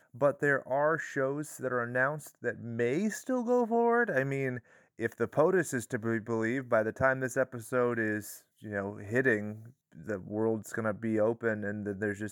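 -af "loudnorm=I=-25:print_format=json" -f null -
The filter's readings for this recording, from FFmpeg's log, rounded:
"input_i" : "-31.4",
"input_tp" : "-12.1",
"input_lra" : "3.5",
"input_thresh" : "-41.8",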